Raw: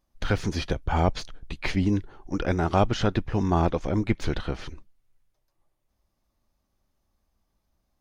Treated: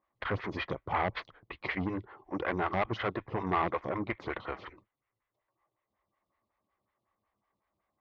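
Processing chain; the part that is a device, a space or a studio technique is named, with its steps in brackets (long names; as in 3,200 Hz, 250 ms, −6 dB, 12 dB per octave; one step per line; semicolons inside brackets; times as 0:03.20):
vibe pedal into a guitar amplifier (phaser with staggered stages 5.4 Hz; tube saturation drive 25 dB, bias 0.35; loudspeaker in its box 100–3,700 Hz, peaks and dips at 110 Hz +4 dB, 160 Hz −5 dB, 250 Hz −6 dB, 1,100 Hz +9 dB, 2,000 Hz +10 dB)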